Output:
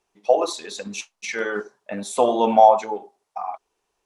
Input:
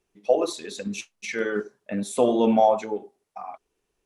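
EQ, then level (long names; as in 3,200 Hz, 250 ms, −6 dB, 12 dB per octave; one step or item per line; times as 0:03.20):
parametric band 880 Hz +13.5 dB 1.5 octaves
parametric band 5,600 Hz +9.5 dB 2.5 octaves
−5.5 dB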